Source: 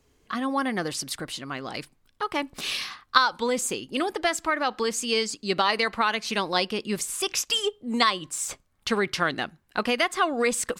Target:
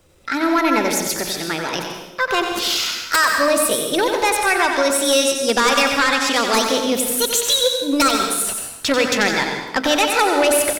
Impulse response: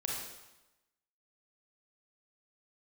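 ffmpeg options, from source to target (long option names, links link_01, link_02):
-filter_complex "[0:a]aeval=exprs='0.708*sin(PI/2*5.01*val(0)/0.708)':channel_layout=same,bandreject=frequency=50:width_type=h:width=6,bandreject=frequency=100:width_type=h:width=6,bandreject=frequency=150:width_type=h:width=6,bandreject=frequency=200:width_type=h:width=6,bandreject=frequency=250:width_type=h:width=6,asplit=2[link_01][link_02];[link_02]adelay=71,lowpass=frequency=1100:poles=1,volume=-18.5dB,asplit=2[link_03][link_04];[link_04]adelay=71,lowpass=frequency=1100:poles=1,volume=0.28[link_05];[link_03][link_05]amix=inputs=2:normalize=0[link_06];[link_01][link_06]amix=inputs=2:normalize=0,asetrate=53981,aresample=44100,atempo=0.816958,asplit=2[link_07][link_08];[1:a]atrim=start_sample=2205,adelay=91[link_09];[link_08][link_09]afir=irnorm=-1:irlink=0,volume=-5.5dB[link_10];[link_07][link_10]amix=inputs=2:normalize=0,volume=-8.5dB"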